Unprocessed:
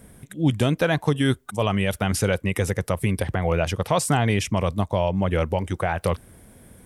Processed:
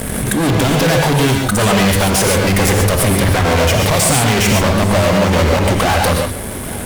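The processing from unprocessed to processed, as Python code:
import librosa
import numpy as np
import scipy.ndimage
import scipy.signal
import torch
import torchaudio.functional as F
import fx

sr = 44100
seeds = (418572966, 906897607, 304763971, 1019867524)

p1 = fx.hum_notches(x, sr, base_hz=50, count=4)
p2 = fx.fuzz(p1, sr, gain_db=41.0, gate_db=-51.0)
p3 = p2 + fx.echo_single(p2, sr, ms=834, db=-18.0, dry=0)
p4 = fx.rev_gated(p3, sr, seeds[0], gate_ms=160, shape='rising', drr_db=1.0)
p5 = fx.pre_swell(p4, sr, db_per_s=24.0)
y = p5 * 10.0 ** (-1.0 / 20.0)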